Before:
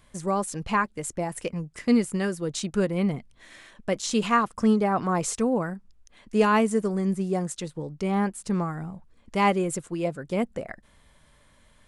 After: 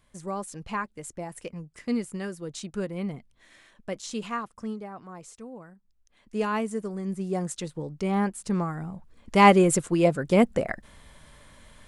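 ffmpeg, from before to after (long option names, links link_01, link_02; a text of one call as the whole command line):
ffmpeg -i in.wav -af "volume=18dB,afade=type=out:start_time=3.91:duration=1.08:silence=0.281838,afade=type=in:start_time=5.75:duration=0.6:silence=0.281838,afade=type=in:start_time=7.03:duration=0.48:silence=0.473151,afade=type=in:start_time=8.85:duration=0.72:silence=0.421697" out.wav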